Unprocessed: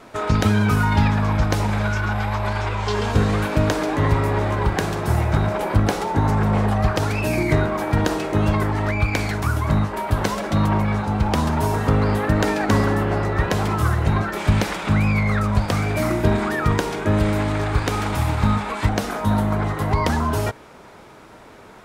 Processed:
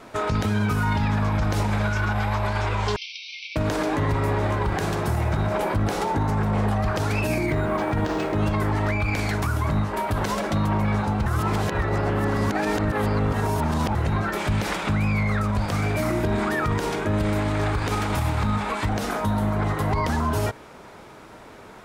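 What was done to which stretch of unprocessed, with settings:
2.96–3.56 s: brick-wall FIR band-pass 2.1–6.1 kHz
7.46–8.38 s: decimation joined by straight lines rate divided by 4×
11.26–13.95 s: reverse
whole clip: peak limiter -15 dBFS

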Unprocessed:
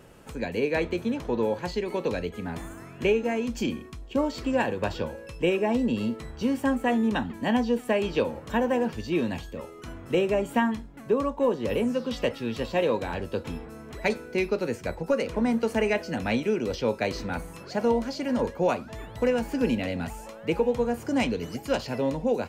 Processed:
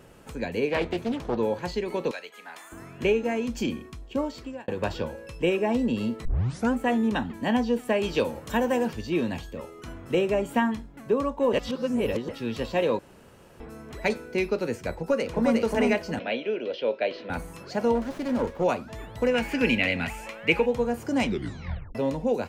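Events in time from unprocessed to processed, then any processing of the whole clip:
0.68–1.37 s: loudspeaker Doppler distortion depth 0.47 ms
2.11–2.72 s: high-pass 970 Hz
3.79–4.68 s: fade out equal-power
6.25 s: tape start 0.48 s
8.03–8.93 s: treble shelf 4.8 kHz +10 dB
11.53–12.29 s: reverse
12.99–13.60 s: room tone
14.97–15.62 s: echo throw 360 ms, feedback 25%, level -1.5 dB
16.19–17.30 s: cabinet simulation 390–3600 Hz, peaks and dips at 600 Hz +6 dB, 860 Hz -7 dB, 1.2 kHz -8 dB, 2 kHz -3 dB, 3.1 kHz +5 dB
17.95–18.64 s: sliding maximum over 9 samples
19.34–20.66 s: peaking EQ 2.3 kHz +14.5 dB 1.1 oct
21.24 s: tape stop 0.71 s

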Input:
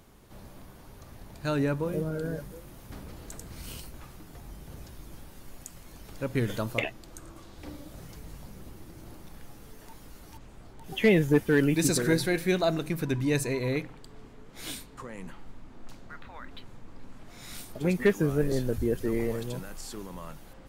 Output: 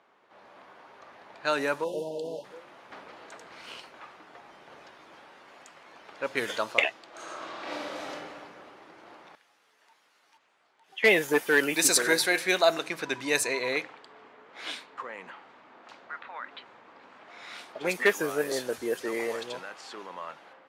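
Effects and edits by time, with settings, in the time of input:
1.84–2.44 s: spectral selection erased 1–2.6 kHz
7.09–8.11 s: reverb throw, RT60 2.1 s, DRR -9 dB
9.35–11.03 s: pre-emphasis filter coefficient 0.9
whole clip: level-controlled noise filter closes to 2.1 kHz, open at -21 dBFS; high-pass 670 Hz 12 dB/octave; level rider gain up to 6 dB; trim +1.5 dB

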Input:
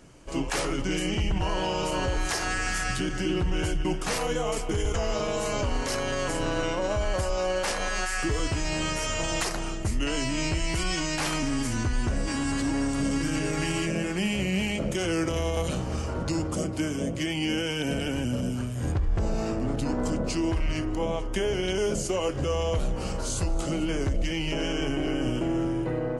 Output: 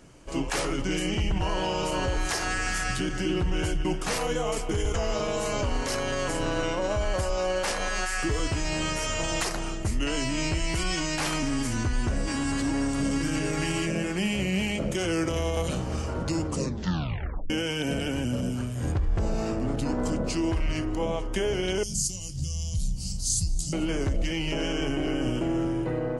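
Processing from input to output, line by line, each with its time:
16.47 s: tape stop 1.03 s
21.83–23.73 s: FFT filter 170 Hz 0 dB, 460 Hz -29 dB, 690 Hz -24 dB, 1.5 kHz -30 dB, 3.1 kHz -9 dB, 4.7 kHz +7 dB

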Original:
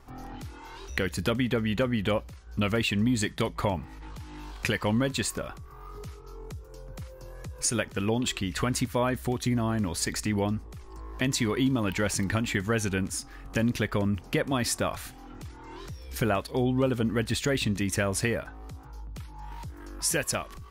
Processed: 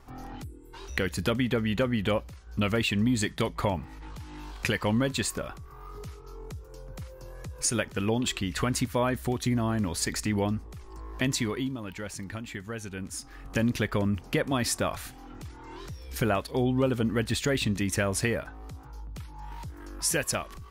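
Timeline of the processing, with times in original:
0.43–0.74 s: time-frequency box 490–7300 Hz -25 dB
11.28–13.43 s: dip -10 dB, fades 0.49 s

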